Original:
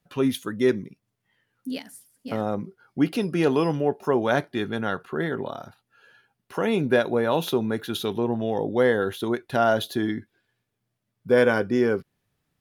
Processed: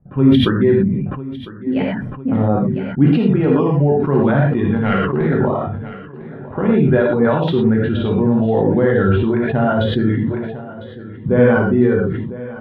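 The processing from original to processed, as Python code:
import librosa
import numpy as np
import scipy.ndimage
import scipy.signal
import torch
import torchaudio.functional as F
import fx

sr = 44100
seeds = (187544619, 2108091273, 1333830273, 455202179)

p1 = fx.self_delay(x, sr, depth_ms=0.22, at=(4.76, 5.27))
p2 = fx.dereverb_blind(p1, sr, rt60_s=1.3)
p3 = fx.env_lowpass(p2, sr, base_hz=760.0, full_db=-20.0)
p4 = fx.bass_treble(p3, sr, bass_db=12, treble_db=-9)
p5 = fx.over_compress(p4, sr, threshold_db=-30.0, ratio=-1.0)
p6 = p4 + (p5 * librosa.db_to_amplitude(2.0))
p7 = fx.air_absorb(p6, sr, metres=460.0)
p8 = p7 + fx.echo_feedback(p7, sr, ms=1003, feedback_pct=43, wet_db=-17.5, dry=0)
p9 = fx.rev_gated(p8, sr, seeds[0], gate_ms=140, shape='flat', drr_db=-1.5)
y = fx.sustainer(p9, sr, db_per_s=35.0)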